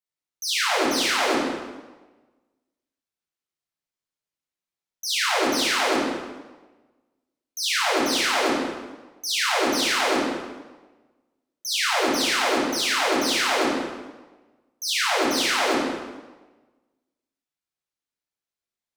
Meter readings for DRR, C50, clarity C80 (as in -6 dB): -7.5 dB, -0.5 dB, 2.0 dB